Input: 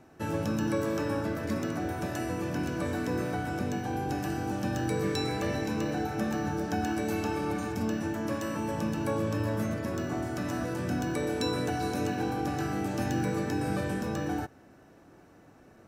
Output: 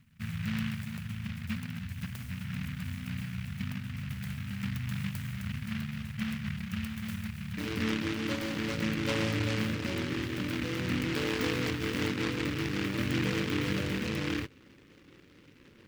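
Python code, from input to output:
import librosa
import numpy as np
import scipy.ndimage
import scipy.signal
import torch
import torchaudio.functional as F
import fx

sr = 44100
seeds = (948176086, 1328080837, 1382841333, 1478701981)

y = fx.brickwall_bandstop(x, sr, low_hz=fx.steps((0.0, 240.0), (7.57, 590.0)), high_hz=6100.0)
y = fx.noise_mod_delay(y, sr, seeds[0], noise_hz=2000.0, depth_ms=0.26)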